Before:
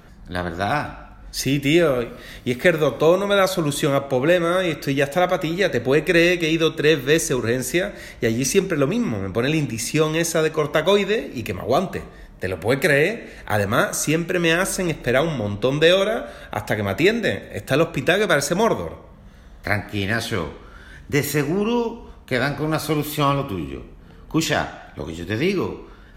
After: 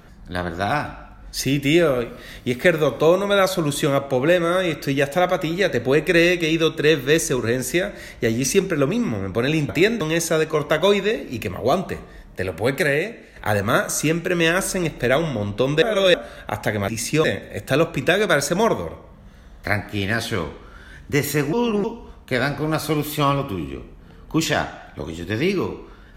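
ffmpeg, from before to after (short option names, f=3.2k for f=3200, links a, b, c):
-filter_complex "[0:a]asplit=10[a][b][c][d][e][f][g][h][i][j];[a]atrim=end=9.692[k];[b]atrim=start=16.918:end=17.242[l];[c]atrim=start=10.048:end=13.4,asetpts=PTS-STARTPTS,afade=t=out:st=2.492:d=0.86:silence=0.398107[m];[d]atrim=start=13.4:end=15.862,asetpts=PTS-STARTPTS,afade=t=in:d=0.004:c=hsin:silence=0.398107[n];[e]atrim=start=15.858:end=16.182,asetpts=PTS-STARTPTS,areverse[o];[f]atrim=start=16.178:end=16.922[p];[g]atrim=start=9.688:end=10.052[q];[h]atrim=start=17.238:end=21.532[r];[i]atrim=start=21.528:end=21.842,asetpts=PTS-STARTPTS,areverse[s];[j]atrim=start=21.838[t];[k][l]acrossfade=d=0.004:c1=hsin:c2=hsin[u];[m][n]concat=n=2:v=0:a=1[v];[u][v]acrossfade=d=0.004:c1=hsin:c2=hsin[w];[w][o]acrossfade=d=0.004:c1=hsin:c2=hsin[x];[x][p]acrossfade=d=0.004:c1=hsin:c2=hsin[y];[y][q]acrossfade=d=0.004:c1=hsin:c2=hsin[z];[z][r]acrossfade=d=0.004:c1=hsin:c2=hsin[aa];[aa][s]acrossfade=d=0.004:c1=hsin:c2=hsin[ab];[ab][t]acrossfade=d=0.004:c1=hsin:c2=hsin"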